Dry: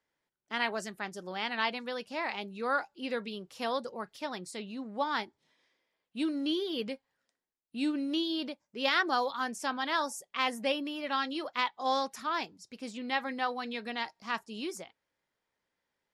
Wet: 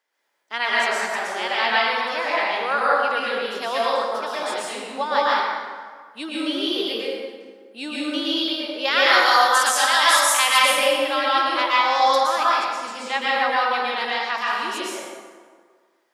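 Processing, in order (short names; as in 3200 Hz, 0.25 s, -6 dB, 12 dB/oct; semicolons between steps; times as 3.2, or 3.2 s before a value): HPF 520 Hz 12 dB/oct; 9.03–10.6 tilt +3.5 dB/oct; plate-style reverb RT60 1.7 s, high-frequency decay 0.6×, pre-delay 0.105 s, DRR -7 dB; gain +6.5 dB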